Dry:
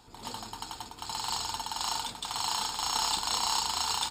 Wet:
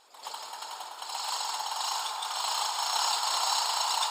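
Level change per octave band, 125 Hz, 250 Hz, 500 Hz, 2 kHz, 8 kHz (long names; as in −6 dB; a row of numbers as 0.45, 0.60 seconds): below −30 dB, below −15 dB, +2.5 dB, +2.5 dB, +0.5 dB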